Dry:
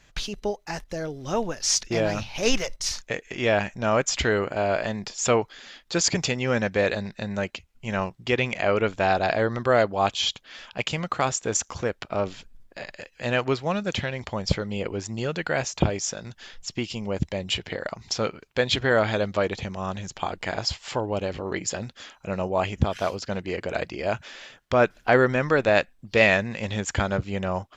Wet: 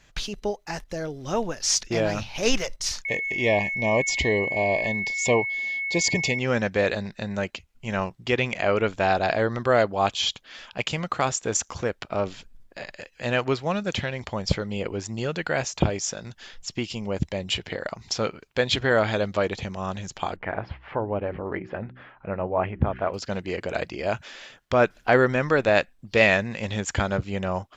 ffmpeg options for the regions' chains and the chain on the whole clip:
-filter_complex "[0:a]asettb=1/sr,asplit=3[a][b][c];[a]atrim=end=3.054[d];[b]atrim=start=3.05:end=6.39,asetpts=PTS-STARTPTS,afade=t=in:d=0.004:c=qsin,afade=t=out:st=3.336:d=0.004:c=qsin,highshelf=f=6k:g=-4,aeval=exprs='val(0)+0.0501*sin(2*PI*2200*n/s)':c=same,asuperstop=centerf=1400:order=12:qfactor=2.2[e];[c]atrim=start=6.386[f];[d][e]acrossfade=d=0.004:c1=hsin:c2=qsin[g];[g][f]acrossfade=d=0.004:c1=qsin:c2=hsin,asettb=1/sr,asplit=3[h][i][j];[h]atrim=end=20.364[k];[i]atrim=start=20.36:end=23.14,asetpts=PTS-STARTPTS,afade=t=in:d=0.004:c=qsin,afade=t=out:st=2.776:d=0.004:c=qsin,lowpass=f=2.1k:w=0.5412,lowpass=f=2.1k:w=1.3066,acompressor=mode=upward:threshold=-45dB:ratio=2.5:attack=3.2:release=140:knee=2.83:detection=peak,bandreject=f=62.82:t=h:w=4,bandreject=f=125.64:t=h:w=4,bandreject=f=188.46:t=h:w=4,bandreject=f=251.28:t=h:w=4,bandreject=f=314.1:t=h:w=4,bandreject=f=376.92:t=h:w=4[l];[j]atrim=start=23.136[m];[k][l]acrossfade=d=0.004:c1=hsin:c2=qsin[n];[n][m]acrossfade=d=0.004:c1=qsin:c2=hsin"

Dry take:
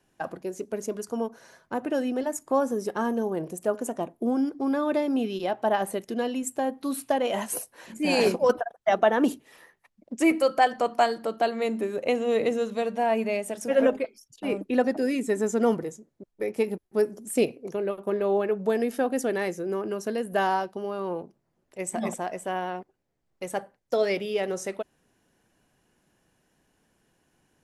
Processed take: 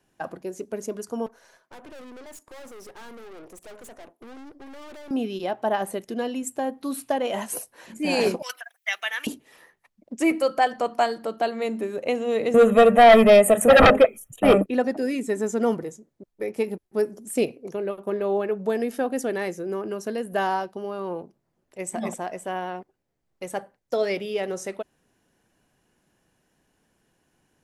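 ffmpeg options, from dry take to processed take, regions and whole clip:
-filter_complex "[0:a]asettb=1/sr,asplit=3[a][b][c];[a]atrim=end=1.264[d];[b]atrim=start=1.26:end=5.11,asetpts=PTS-STARTPTS,afade=t=in:d=0.004:c=qsin,afade=t=out:st=3.846:d=0.004:c=qsin,highpass=340,aeval=exprs='(tanh(126*val(0)+0.65)-tanh(0.65))/126':c=same[e];[c]atrim=start=5.106[f];[d][e]acrossfade=d=0.004:c1=hsin:c2=qsin[g];[g][f]acrossfade=d=0.004:c1=qsin:c2=hsin,asettb=1/sr,asplit=3[h][i][j];[h]atrim=end=8.424[k];[i]atrim=start=8.42:end=9.27,asetpts=PTS-STARTPTS,afade=t=in:d=0.004:c=qsin,afade=t=out:st=0.846:d=0.004:c=qsin,highpass=f=2.2k:t=q:w=2.7,aemphasis=mode=production:type=50fm[l];[j]atrim=start=9.266[m];[k][l]acrossfade=d=0.004:c1=hsin:c2=qsin[n];[n][m]acrossfade=d=0.004:c1=qsin:c2=hsin,asettb=1/sr,asplit=3[o][p][q];[o]atrim=end=12.544[r];[p]atrim=start=12.54:end=14.66,asetpts=PTS-STARTPTS,afade=t=in:d=0.004:c=qsin,afade=t=out:st=2.116:d=0.004:c=qsin,asuperstop=centerf=4900:order=4:qfactor=0.81,aeval=exprs='0.335*sin(PI/2*3.98*val(0)/0.335)':c=same,aecho=1:1:1.6:0.47,atrim=end_sample=93492[s];[q]atrim=start=14.656[t];[r][s]acrossfade=d=0.004:c1=hsin:c2=qsin[u];[u][t]acrossfade=d=0.004:c1=qsin:c2=hsin"

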